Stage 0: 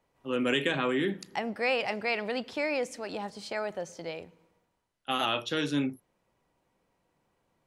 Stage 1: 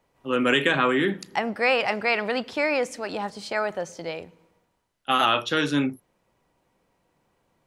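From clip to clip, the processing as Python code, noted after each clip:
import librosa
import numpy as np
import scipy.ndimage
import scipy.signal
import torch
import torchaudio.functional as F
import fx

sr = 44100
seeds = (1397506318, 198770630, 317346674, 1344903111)

y = fx.dynamic_eq(x, sr, hz=1300.0, q=1.2, threshold_db=-44.0, ratio=4.0, max_db=6)
y = y * 10.0 ** (5.0 / 20.0)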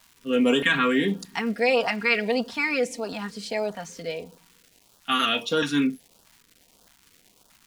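y = x + 0.72 * np.pad(x, (int(4.3 * sr / 1000.0), 0))[:len(x)]
y = fx.dmg_crackle(y, sr, seeds[0], per_s=580.0, level_db=-42.0)
y = fx.filter_lfo_notch(y, sr, shape='saw_up', hz=1.6, low_hz=390.0, high_hz=2400.0, q=0.8)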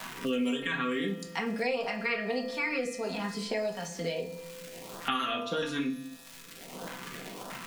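y = fx.comb_fb(x, sr, f0_hz=170.0, decay_s=1.3, harmonics='all', damping=0.0, mix_pct=70)
y = fx.room_shoebox(y, sr, seeds[1], volume_m3=190.0, walls='furnished', distance_m=1.1)
y = fx.band_squash(y, sr, depth_pct=100)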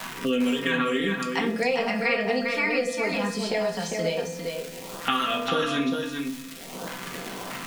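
y = x + 10.0 ** (-5.0 / 20.0) * np.pad(x, (int(402 * sr / 1000.0), 0))[:len(x)]
y = y * 10.0 ** (5.5 / 20.0)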